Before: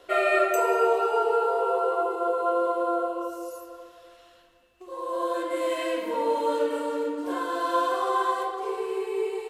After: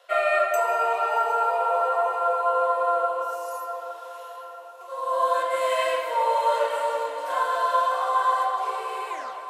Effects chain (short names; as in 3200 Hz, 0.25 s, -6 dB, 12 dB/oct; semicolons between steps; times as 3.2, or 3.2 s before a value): tape stop at the end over 0.40 s; Chebyshev high-pass 560 Hz, order 4; dynamic EQ 940 Hz, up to +4 dB, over -35 dBFS, Q 1; vocal rider within 3 dB 0.5 s; diffused feedback echo 0.728 s, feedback 50%, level -11.5 dB; reverb RT60 2.4 s, pre-delay 0.129 s, DRR 13.5 dB; gain +2 dB